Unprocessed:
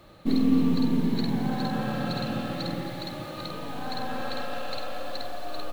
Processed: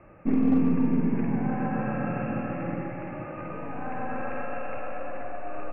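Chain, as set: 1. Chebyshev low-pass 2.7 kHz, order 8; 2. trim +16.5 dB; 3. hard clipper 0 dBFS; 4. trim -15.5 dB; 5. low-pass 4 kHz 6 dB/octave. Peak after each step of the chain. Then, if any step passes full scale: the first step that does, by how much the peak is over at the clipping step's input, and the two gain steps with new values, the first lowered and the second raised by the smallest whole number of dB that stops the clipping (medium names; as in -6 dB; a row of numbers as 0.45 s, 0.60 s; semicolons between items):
-12.0 dBFS, +4.5 dBFS, 0.0 dBFS, -15.5 dBFS, -15.5 dBFS; step 2, 4.5 dB; step 2 +11.5 dB, step 4 -10.5 dB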